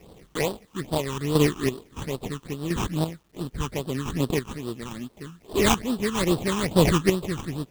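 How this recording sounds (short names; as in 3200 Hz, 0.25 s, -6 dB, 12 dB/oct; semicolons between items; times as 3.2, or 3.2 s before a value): chopped level 0.74 Hz, depth 60%, duty 25%; aliases and images of a low sample rate 1500 Hz, jitter 20%; phasing stages 8, 2.4 Hz, lowest notch 580–2100 Hz; a quantiser's noise floor 12-bit, dither none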